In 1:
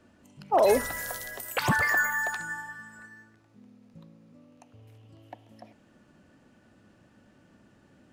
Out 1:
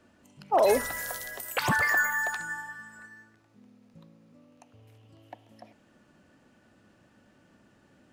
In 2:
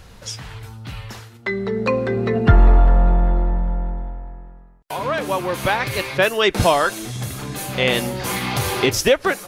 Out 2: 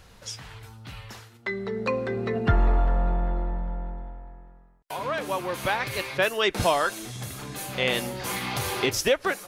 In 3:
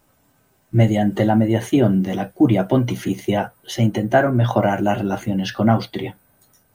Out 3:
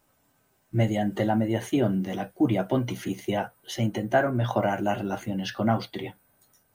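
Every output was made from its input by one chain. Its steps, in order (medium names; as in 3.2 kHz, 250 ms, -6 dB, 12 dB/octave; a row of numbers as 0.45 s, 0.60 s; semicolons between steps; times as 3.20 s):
bass shelf 350 Hz -4 dB; normalise loudness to -27 LUFS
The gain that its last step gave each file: +0.5 dB, -5.5 dB, -5.5 dB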